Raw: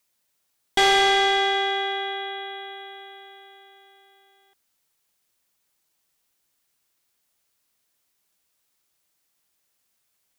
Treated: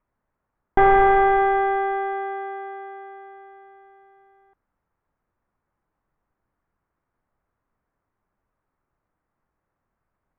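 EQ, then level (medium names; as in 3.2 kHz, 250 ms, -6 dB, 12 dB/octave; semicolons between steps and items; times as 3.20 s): low-pass 1.9 kHz 24 dB/octave; tilt EQ -3.5 dB/octave; peaking EQ 1.1 kHz +6.5 dB 1.2 oct; 0.0 dB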